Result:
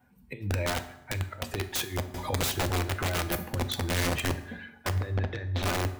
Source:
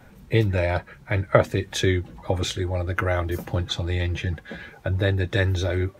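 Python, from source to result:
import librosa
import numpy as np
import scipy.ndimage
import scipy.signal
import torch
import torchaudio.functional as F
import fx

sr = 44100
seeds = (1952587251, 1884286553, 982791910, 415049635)

y = fx.bin_expand(x, sr, power=1.5)
y = scipy.signal.sosfilt(scipy.signal.butter(4, 61.0, 'highpass', fs=sr, output='sos'), y)
y = fx.low_shelf(y, sr, hz=190.0, db=-3.0)
y = fx.over_compress(y, sr, threshold_db=-29.0, ratio=-0.5)
y = (np.mod(10.0 ** (23.0 / 20.0) * y + 1.0, 2.0) - 1.0) / 10.0 ** (23.0 / 20.0)
y = fx.air_absorb(y, sr, metres=230.0, at=(4.92, 5.62), fade=0.02)
y = fx.rev_fdn(y, sr, rt60_s=0.9, lf_ratio=1.0, hf_ratio=0.7, size_ms=24.0, drr_db=8.5)
y = fx.band_squash(y, sr, depth_pct=70, at=(2.14, 2.7))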